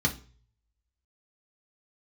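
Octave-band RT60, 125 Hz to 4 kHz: 0.85 s, 0.40 s, 0.40 s, 0.35 s, 0.35 s, 0.40 s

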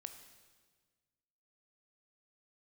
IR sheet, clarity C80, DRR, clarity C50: 10.0 dB, 7.0 dB, 9.0 dB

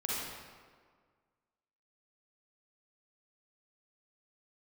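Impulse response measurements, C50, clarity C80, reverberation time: -4.5 dB, -0.5 dB, 1.7 s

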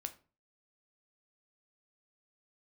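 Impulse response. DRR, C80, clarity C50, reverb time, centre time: 8.0 dB, 21.0 dB, 16.0 dB, 0.35 s, 6 ms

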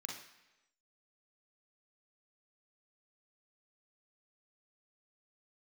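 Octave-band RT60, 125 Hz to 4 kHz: 0.85 s, 0.95 s, 1.0 s, 1.0 s, 1.0 s, 0.95 s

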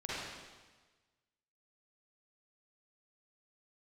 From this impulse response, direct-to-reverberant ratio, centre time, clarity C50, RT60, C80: -9.5 dB, 123 ms, -6.5 dB, 1.3 s, -1.5 dB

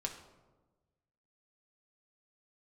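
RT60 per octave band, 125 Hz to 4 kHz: 1.7 s, 1.5 s, 1.4 s, 1.1 s, 0.80 s, 0.60 s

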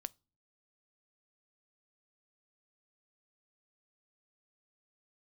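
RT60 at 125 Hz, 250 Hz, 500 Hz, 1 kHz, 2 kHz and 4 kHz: 0.65 s, 0.65 s, 0.35 s, 0.30 s, 0.25 s, 0.30 s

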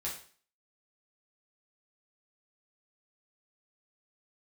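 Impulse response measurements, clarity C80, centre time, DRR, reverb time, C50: 11.5 dB, 29 ms, -5.5 dB, 0.45 s, 6.5 dB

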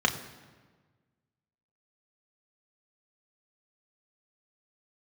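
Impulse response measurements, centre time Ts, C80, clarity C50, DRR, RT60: 16 ms, 13.0 dB, 12.0 dB, 2.5 dB, 1.4 s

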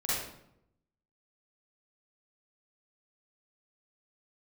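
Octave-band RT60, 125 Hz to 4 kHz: 1.1 s, 0.95 s, 0.85 s, 0.70 s, 0.60 s, 0.50 s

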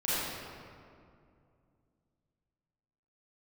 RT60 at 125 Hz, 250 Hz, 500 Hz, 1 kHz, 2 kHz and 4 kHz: 3.4 s, 3.1 s, 2.5 s, 2.2 s, 1.8 s, 1.3 s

